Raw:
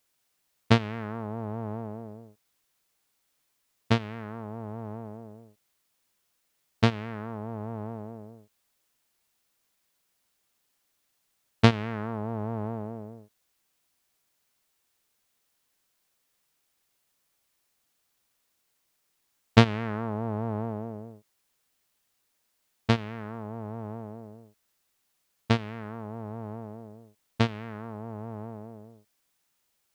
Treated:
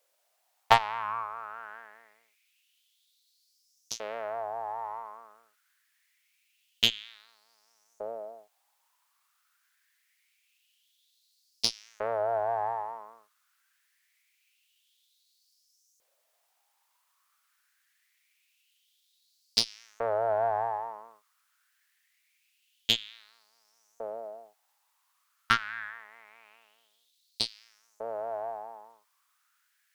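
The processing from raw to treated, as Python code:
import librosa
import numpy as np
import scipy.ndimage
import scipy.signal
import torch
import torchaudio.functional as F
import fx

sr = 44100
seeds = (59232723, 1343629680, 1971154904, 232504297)

y = fx.filter_lfo_highpass(x, sr, shape='saw_up', hz=0.25, low_hz=530.0, high_hz=6400.0, q=5.6)
y = fx.cheby_harmonics(y, sr, harmonics=(8,), levels_db=(-24,), full_scale_db=-1.5)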